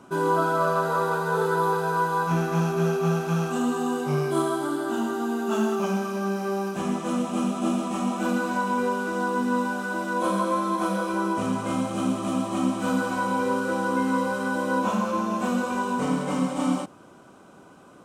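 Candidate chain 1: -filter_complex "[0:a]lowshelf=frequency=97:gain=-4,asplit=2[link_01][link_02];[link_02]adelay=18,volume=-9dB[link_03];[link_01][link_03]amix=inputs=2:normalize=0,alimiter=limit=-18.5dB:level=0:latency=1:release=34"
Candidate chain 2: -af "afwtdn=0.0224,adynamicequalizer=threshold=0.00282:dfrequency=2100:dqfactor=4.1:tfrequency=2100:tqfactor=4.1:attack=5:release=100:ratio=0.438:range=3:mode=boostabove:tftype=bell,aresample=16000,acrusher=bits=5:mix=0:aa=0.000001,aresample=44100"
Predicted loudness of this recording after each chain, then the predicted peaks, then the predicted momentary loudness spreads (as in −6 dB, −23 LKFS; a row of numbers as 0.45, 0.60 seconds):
−27.5, −25.5 LKFS; −18.5, −10.0 dBFS; 2, 4 LU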